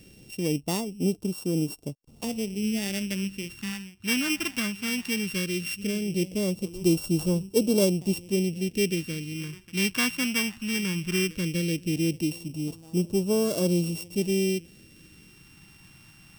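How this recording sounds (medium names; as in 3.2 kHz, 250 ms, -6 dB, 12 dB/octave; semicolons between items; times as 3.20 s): a buzz of ramps at a fixed pitch in blocks of 16 samples; phasing stages 2, 0.17 Hz, lowest notch 470–1900 Hz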